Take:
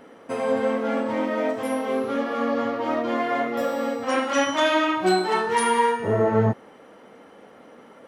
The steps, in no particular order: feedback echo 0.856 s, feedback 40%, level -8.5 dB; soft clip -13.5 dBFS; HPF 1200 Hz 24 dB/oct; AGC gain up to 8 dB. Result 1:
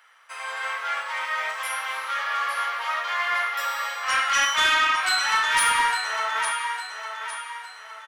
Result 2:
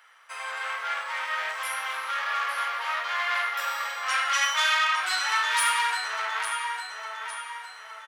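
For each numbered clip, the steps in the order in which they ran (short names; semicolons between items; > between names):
HPF > AGC > feedback echo > soft clip; AGC > feedback echo > soft clip > HPF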